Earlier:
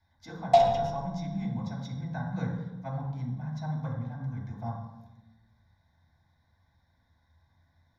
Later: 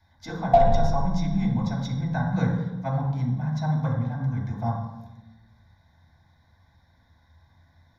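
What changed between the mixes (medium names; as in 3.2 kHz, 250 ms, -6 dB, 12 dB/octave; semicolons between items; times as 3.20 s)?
speech +8.5 dB; background: add tilt EQ -4.5 dB/octave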